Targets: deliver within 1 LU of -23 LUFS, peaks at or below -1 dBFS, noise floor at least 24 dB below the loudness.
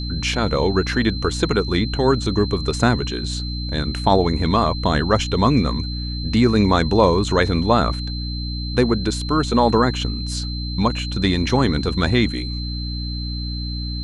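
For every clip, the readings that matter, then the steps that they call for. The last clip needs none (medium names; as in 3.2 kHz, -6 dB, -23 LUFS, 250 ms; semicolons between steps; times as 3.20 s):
hum 60 Hz; highest harmonic 300 Hz; hum level -24 dBFS; steady tone 4.1 kHz; tone level -31 dBFS; loudness -20.0 LUFS; peak level -1.0 dBFS; loudness target -23.0 LUFS
-> hum notches 60/120/180/240/300 Hz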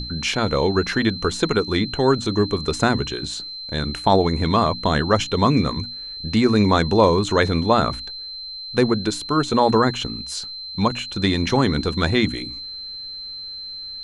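hum not found; steady tone 4.1 kHz; tone level -31 dBFS
-> band-stop 4.1 kHz, Q 30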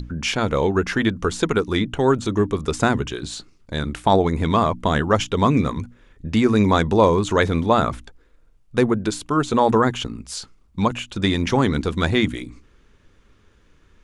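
steady tone not found; loudness -20.5 LUFS; peak level -2.5 dBFS; loudness target -23.0 LUFS
-> trim -2.5 dB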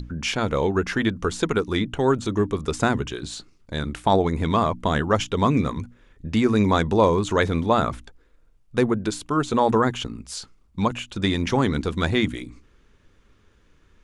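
loudness -23.0 LUFS; peak level -5.0 dBFS; noise floor -58 dBFS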